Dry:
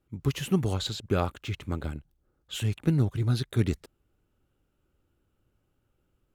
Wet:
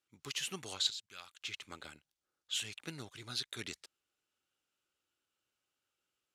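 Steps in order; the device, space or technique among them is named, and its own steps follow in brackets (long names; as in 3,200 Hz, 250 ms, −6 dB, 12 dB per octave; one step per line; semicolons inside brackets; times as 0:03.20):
piezo pickup straight into a mixer (low-pass filter 5,600 Hz 12 dB per octave; first difference)
0:00.90–0:01.41: guitar amp tone stack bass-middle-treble 5-5-5
level +7.5 dB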